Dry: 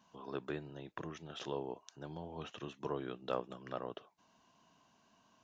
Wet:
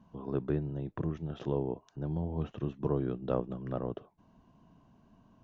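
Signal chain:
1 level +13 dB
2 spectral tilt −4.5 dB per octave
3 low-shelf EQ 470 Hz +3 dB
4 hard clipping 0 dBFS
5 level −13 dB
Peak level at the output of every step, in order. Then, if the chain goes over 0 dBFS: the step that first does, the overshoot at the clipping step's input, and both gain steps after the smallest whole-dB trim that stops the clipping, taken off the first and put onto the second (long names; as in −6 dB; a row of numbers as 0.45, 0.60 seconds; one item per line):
−7.0, −4.0, −2.5, −2.5, −15.5 dBFS
no step passes full scale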